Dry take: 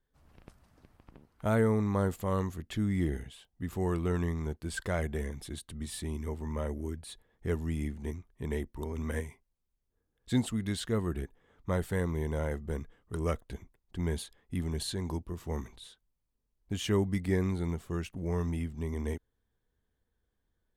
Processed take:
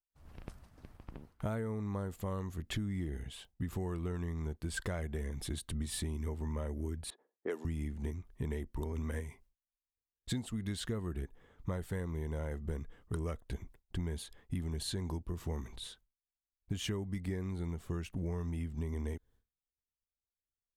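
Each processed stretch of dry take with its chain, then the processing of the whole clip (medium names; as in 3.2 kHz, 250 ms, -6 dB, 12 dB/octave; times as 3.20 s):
7.10–7.65 s: high-pass 300 Hz 24 dB/octave + level-controlled noise filter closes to 760 Hz, open at -30 dBFS
whole clip: expander -59 dBFS; bass shelf 100 Hz +5.5 dB; compression 12:1, threshold -38 dBFS; trim +4.5 dB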